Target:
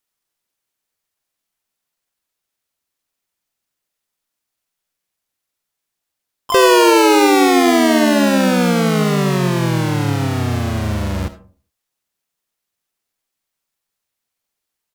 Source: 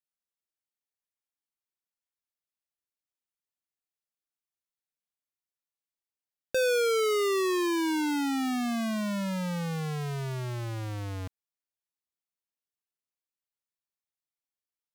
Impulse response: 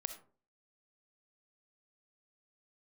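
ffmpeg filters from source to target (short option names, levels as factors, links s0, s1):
-filter_complex "[0:a]asplit=4[s0][s1][s2][s3];[s1]asetrate=33038,aresample=44100,atempo=1.33484,volume=1[s4];[s2]asetrate=58866,aresample=44100,atempo=0.749154,volume=0.282[s5];[s3]asetrate=88200,aresample=44100,atempo=0.5,volume=0.708[s6];[s0][s4][s5][s6]amix=inputs=4:normalize=0,asplit=2[s7][s8];[1:a]atrim=start_sample=2205[s9];[s8][s9]afir=irnorm=-1:irlink=0,volume=2.99[s10];[s7][s10]amix=inputs=2:normalize=0"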